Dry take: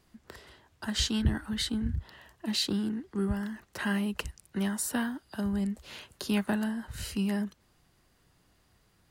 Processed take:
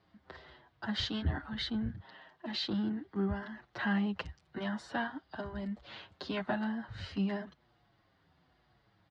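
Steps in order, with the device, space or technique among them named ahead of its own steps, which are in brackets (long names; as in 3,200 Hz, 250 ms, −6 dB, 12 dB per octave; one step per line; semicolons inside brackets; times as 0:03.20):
0:01.89–0:02.46: high-pass filter 170 Hz 12 dB per octave
barber-pole flanger into a guitar amplifier (barber-pole flanger 6.9 ms −1 Hz; soft clipping −21.5 dBFS, distortion −22 dB; loudspeaker in its box 79–4,000 Hz, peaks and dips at 230 Hz −5 dB, 420 Hz −4 dB, 740 Hz +4 dB, 2,600 Hz −6 dB)
level +2.5 dB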